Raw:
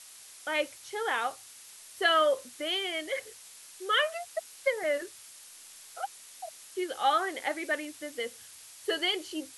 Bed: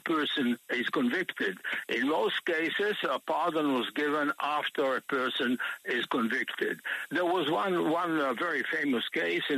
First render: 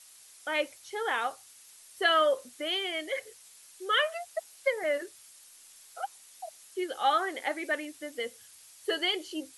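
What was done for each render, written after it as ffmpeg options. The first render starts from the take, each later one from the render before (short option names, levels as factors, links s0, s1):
-af "afftdn=nr=6:nf=-51"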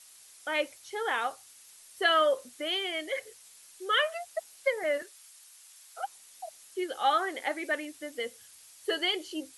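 -filter_complex "[0:a]asettb=1/sr,asplit=3[s0][s1][s2];[s0]atrim=end=5.024[s3];[s1]atrim=start=5.02:end=5.98,asetpts=PTS-STARTPTS,afade=t=in:d=0.004:c=qsin,afade=t=out:st=0.956:d=0.004:c=qsin,highpass=680[s4];[s2]atrim=start=5.976[s5];[s3][s4]acrossfade=d=0.004:c1=hsin:c2=qsin[s6];[s6][s5]acrossfade=d=0.004:c1=qsin:c2=hsin"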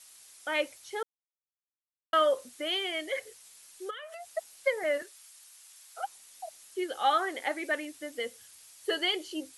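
-filter_complex "[0:a]asplit=3[s0][s1][s2];[s0]afade=t=out:st=3.89:d=0.02[s3];[s1]acompressor=threshold=0.0112:ratio=16:attack=3.2:release=140:knee=1:detection=peak,afade=t=in:st=3.89:d=0.02,afade=t=out:st=4.31:d=0.02[s4];[s2]afade=t=in:st=4.31:d=0.02[s5];[s3][s4][s5]amix=inputs=3:normalize=0,asplit=3[s6][s7][s8];[s6]atrim=end=1.03,asetpts=PTS-STARTPTS,afade=t=out:st=1.026:d=0.004:c=hsin[s9];[s7]atrim=start=1.03:end=2.13,asetpts=PTS-STARTPTS,volume=0[s10];[s8]atrim=start=2.13,asetpts=PTS-STARTPTS,afade=t=in:d=0.004:c=hsin[s11];[s9][s10][s11]concat=n=3:v=0:a=1"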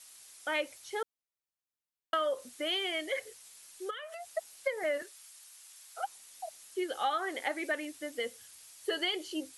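-af "acompressor=threshold=0.0398:ratio=6"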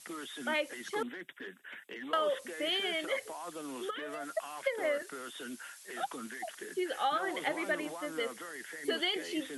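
-filter_complex "[1:a]volume=0.188[s0];[0:a][s0]amix=inputs=2:normalize=0"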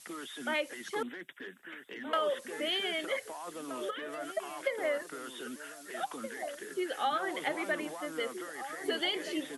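-filter_complex "[0:a]asplit=2[s0][s1];[s1]adelay=1574,volume=0.355,highshelf=f=4000:g=-35.4[s2];[s0][s2]amix=inputs=2:normalize=0"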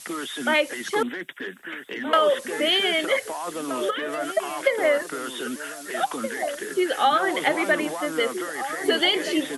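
-af "volume=3.76"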